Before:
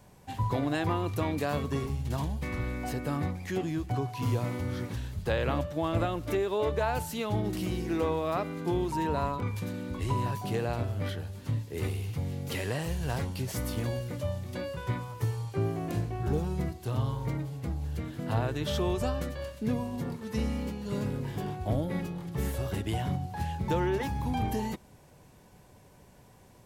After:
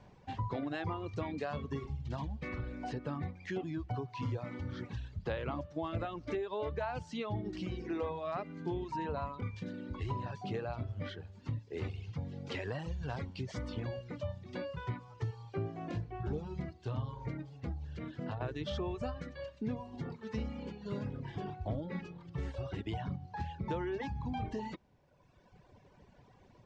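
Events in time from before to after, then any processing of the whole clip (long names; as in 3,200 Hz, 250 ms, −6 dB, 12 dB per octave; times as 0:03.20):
0:17.83–0:18.41: downward compressor 12 to 1, threshold −30 dBFS
0:22.17–0:22.79: notch comb filter 210 Hz
whole clip: reverb reduction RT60 1.5 s; Bessel low-pass filter 3,800 Hz, order 8; downward compressor 2 to 1, threshold −36 dBFS; level −1 dB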